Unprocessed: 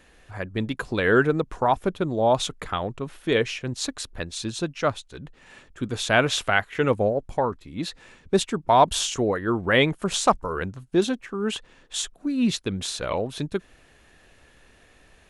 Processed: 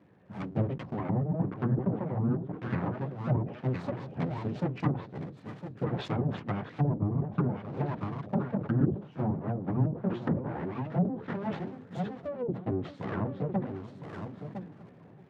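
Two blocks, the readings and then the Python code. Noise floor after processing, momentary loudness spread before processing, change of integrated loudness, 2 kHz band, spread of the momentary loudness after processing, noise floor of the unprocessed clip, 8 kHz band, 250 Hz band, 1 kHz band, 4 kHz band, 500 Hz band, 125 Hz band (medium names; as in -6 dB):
-53 dBFS, 12 LU, -8.0 dB, -19.0 dB, 12 LU, -56 dBFS, under -35 dB, -4.0 dB, -13.5 dB, -24.0 dB, -12.0 dB, +2.0 dB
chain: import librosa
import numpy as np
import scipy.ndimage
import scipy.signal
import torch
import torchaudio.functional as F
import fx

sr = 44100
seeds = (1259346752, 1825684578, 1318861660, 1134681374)

y = fx.chorus_voices(x, sr, voices=6, hz=0.29, base_ms=13, depth_ms=3.6, mix_pct=50)
y = scipy.signal.sosfilt(scipy.signal.butter(2, 1100.0, 'lowpass', fs=sr, output='sos'), y)
y = fx.echo_feedback(y, sr, ms=626, feedback_pct=46, wet_db=-20.0)
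y = np.abs(y)
y = y + 10.0 ** (-12.0 / 20.0) * np.pad(y, (int(1008 * sr / 1000.0), 0))[:len(y)]
y = fx.env_lowpass_down(y, sr, base_hz=460.0, full_db=-21.0)
y = scipy.signal.sosfilt(scipy.signal.butter(4, 110.0, 'highpass', fs=sr, output='sos'), y)
y = fx.rider(y, sr, range_db=4, speed_s=0.5)
y = fx.peak_eq(y, sr, hz=140.0, db=15.0, octaves=2.3)
y = fx.sustainer(y, sr, db_per_s=120.0)
y = y * 10.0 ** (-4.0 / 20.0)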